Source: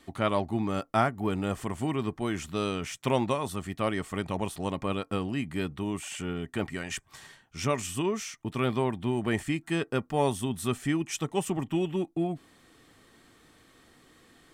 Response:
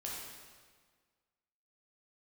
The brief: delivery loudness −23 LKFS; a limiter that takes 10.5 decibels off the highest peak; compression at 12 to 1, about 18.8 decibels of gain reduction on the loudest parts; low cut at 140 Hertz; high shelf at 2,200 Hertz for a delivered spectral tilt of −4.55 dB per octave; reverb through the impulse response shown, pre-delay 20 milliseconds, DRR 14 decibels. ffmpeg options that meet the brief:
-filter_complex "[0:a]highpass=140,highshelf=frequency=2200:gain=-4,acompressor=threshold=-39dB:ratio=12,alimiter=level_in=13dB:limit=-24dB:level=0:latency=1,volume=-13dB,asplit=2[link_01][link_02];[1:a]atrim=start_sample=2205,adelay=20[link_03];[link_02][link_03]afir=irnorm=-1:irlink=0,volume=-14.5dB[link_04];[link_01][link_04]amix=inputs=2:normalize=0,volume=24.5dB"

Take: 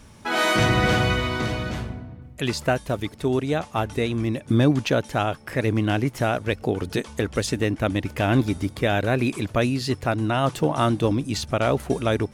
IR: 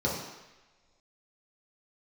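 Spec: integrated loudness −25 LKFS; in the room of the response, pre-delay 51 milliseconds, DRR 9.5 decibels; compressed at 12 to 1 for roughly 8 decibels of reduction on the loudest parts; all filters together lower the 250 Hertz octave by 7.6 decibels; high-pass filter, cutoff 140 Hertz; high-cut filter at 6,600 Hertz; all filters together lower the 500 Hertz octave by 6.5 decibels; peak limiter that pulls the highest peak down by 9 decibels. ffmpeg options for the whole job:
-filter_complex "[0:a]highpass=140,lowpass=6600,equalizer=frequency=250:width_type=o:gain=-7,equalizer=frequency=500:width_type=o:gain=-6.5,acompressor=threshold=-27dB:ratio=12,alimiter=limit=-22dB:level=0:latency=1,asplit=2[link_01][link_02];[1:a]atrim=start_sample=2205,adelay=51[link_03];[link_02][link_03]afir=irnorm=-1:irlink=0,volume=-19.5dB[link_04];[link_01][link_04]amix=inputs=2:normalize=0,volume=9dB"

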